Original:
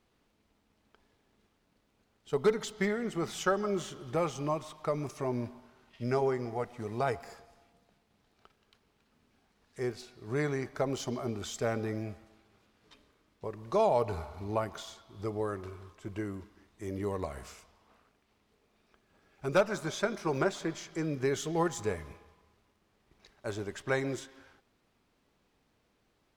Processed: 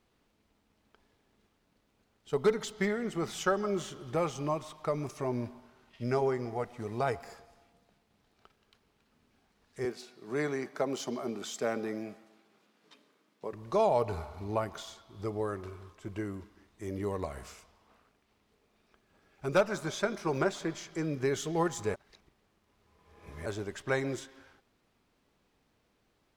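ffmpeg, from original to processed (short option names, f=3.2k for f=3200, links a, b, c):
-filter_complex "[0:a]asettb=1/sr,asplit=3[a][b][c];[a]atrim=end=9.854[d];[b]atrim=start=9.85:end=13.53,asetpts=PTS-STARTPTS,afade=t=in:d=0.004:c=qsin,afade=t=out:st=3.676:d=0.004:c=qsin,highpass=f=170:w=0.5412,highpass=f=170:w=1.3066[e];[c]atrim=start=13.526[f];[d][e]acrossfade=d=0.004:c1=hsin:c2=qsin[g];[g][f]acrossfade=d=0.004:c1=qsin:c2=hsin,asplit=3[h][i][j];[h]atrim=end=21.942[k];[i]atrim=start=21.938:end=23.462,asetpts=PTS-STARTPTS,areverse[l];[j]atrim=start=23.458[m];[k][l]acrossfade=d=0.004:c1=hsin:c2=hsin[n];[n][m]acrossfade=d=0.004:c1=hsin:c2=hsin"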